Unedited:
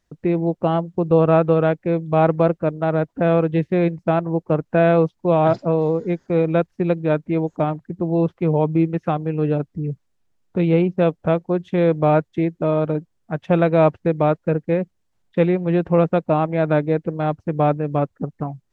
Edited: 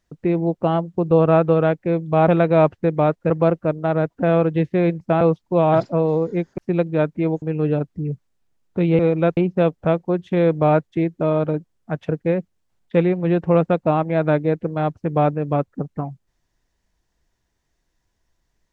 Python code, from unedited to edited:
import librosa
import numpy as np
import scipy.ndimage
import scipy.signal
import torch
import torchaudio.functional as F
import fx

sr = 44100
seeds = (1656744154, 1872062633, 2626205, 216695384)

y = fx.edit(x, sr, fx.cut(start_s=4.19, length_s=0.75),
    fx.move(start_s=6.31, length_s=0.38, to_s=10.78),
    fx.cut(start_s=7.53, length_s=1.68),
    fx.move(start_s=13.5, length_s=1.02, to_s=2.28), tone=tone)